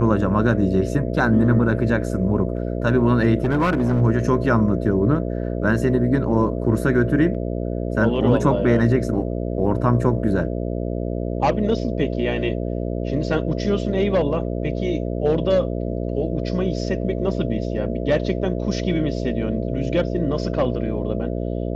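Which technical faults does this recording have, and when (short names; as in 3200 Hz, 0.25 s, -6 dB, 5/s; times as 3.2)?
buzz 60 Hz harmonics 11 -25 dBFS
3.43–4.02 clipped -14.5 dBFS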